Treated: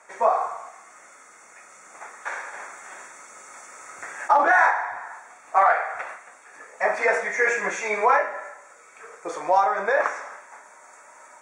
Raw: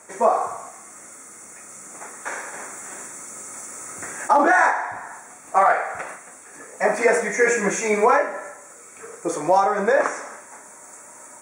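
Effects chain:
three-way crossover with the lows and the highs turned down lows −16 dB, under 540 Hz, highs −19 dB, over 5,200 Hz

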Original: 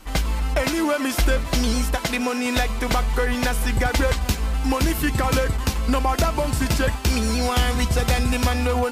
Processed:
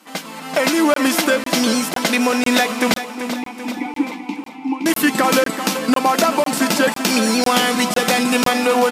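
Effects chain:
0:02.95–0:04.86: formant filter u
repeating echo 386 ms, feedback 45%, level −11 dB
automatic gain control gain up to 13 dB
linear-phase brick-wall high-pass 170 Hz
notch filter 390 Hz, Q 12
regular buffer underruns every 0.50 s, samples 1,024, zero, from 0:00.94
level −1 dB

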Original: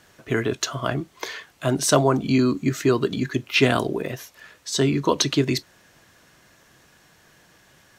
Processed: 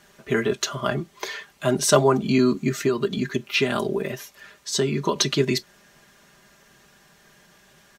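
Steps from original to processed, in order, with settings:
comb filter 5 ms, depth 66%
0:02.86–0:05.16: downward compressor, threshold −17 dBFS, peak gain reduction 8 dB
level −1 dB

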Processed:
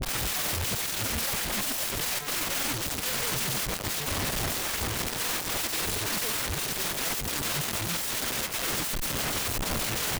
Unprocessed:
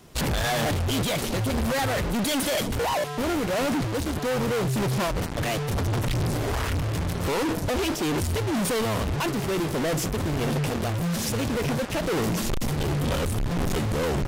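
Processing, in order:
turntable start at the beginning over 0.31 s
wrap-around overflow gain 33.5 dB
tempo change 1.4×
level +7 dB

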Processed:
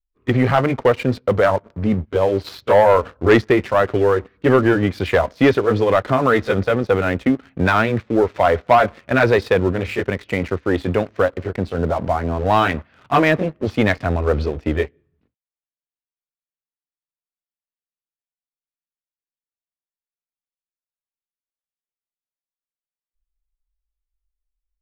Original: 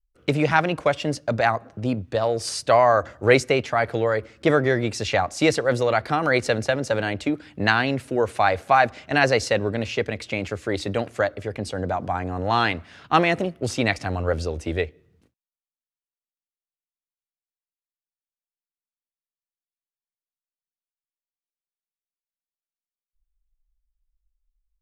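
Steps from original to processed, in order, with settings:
pitch glide at a constant tempo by −3 semitones ending unshifted
Gaussian smoothing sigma 2.4 samples
leveller curve on the samples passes 2

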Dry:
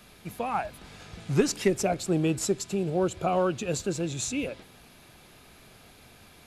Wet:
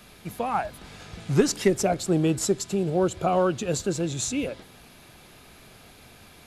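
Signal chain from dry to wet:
dynamic equaliser 2,500 Hz, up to −5 dB, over −55 dBFS, Q 5.4
level +3 dB

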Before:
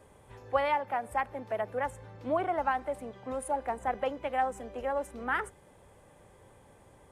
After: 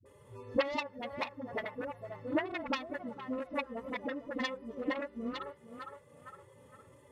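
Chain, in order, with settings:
harmonic-percussive split with one part muted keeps harmonic
high-pass filter 74 Hz
feedback echo with a high-pass in the loop 462 ms, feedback 48%, high-pass 660 Hz, level −8.5 dB
in parallel at +2 dB: downward compressor, threshold −42 dBFS, peak gain reduction 17 dB
on the sum: transient designer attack +6 dB, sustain −4 dB
harmonic generator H 7 −10 dB, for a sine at −9.5 dBFS
parametric band 260 Hz +7 dB 0.85 octaves
notch comb filter 790 Hz
all-pass dispersion highs, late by 58 ms, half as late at 350 Hz
level −7.5 dB

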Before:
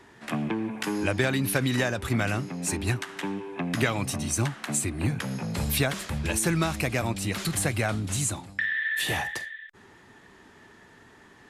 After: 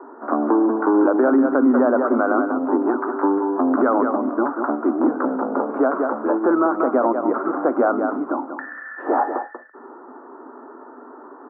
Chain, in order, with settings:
Chebyshev band-pass filter 250–1,400 Hz, order 5
on a send: single-tap delay 189 ms −9 dB
on the sum: boost into a limiter +23.5 dB
level −7.5 dB

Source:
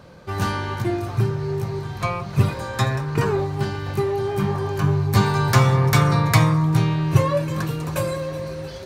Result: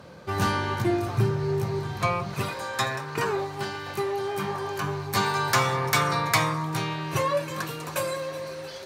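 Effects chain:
high-pass filter 120 Hz 6 dB per octave, from 0:02.34 690 Hz
sine wavefolder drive 4 dB, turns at −4 dBFS
level −7.5 dB

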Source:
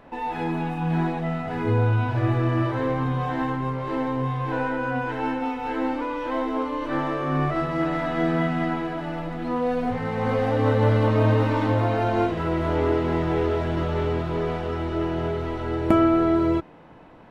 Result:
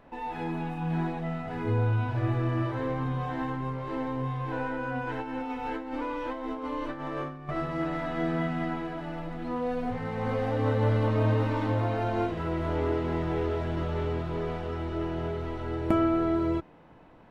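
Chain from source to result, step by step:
low-shelf EQ 86 Hz +4.5 dB
0:05.07–0:07.49: compressor whose output falls as the input rises −27 dBFS, ratio −0.5
level −6.5 dB

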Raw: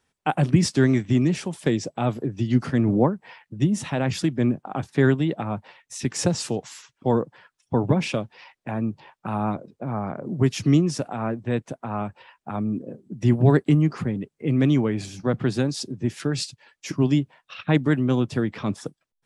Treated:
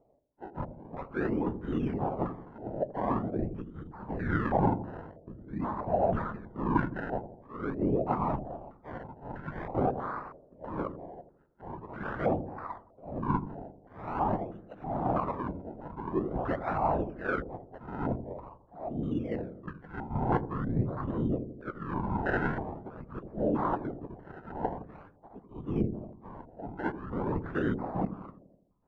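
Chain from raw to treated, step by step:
reversed playback
downward compressor 10 to 1, threshold −29 dBFS, peak gain reduction 18.5 dB
reversed playback
volume swells 252 ms
time stretch by phase vocoder 1.5×
random phases in short frames
sample-and-hold swept by an LFO 26×, swing 100% 0.46 Hz
on a send: delay with a low-pass on its return 83 ms, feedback 54%, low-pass 520 Hz, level −9 dB
on the sum: low-pass on a step sequencer 3.1 Hz 620–1,500 Hz
level +3.5 dB

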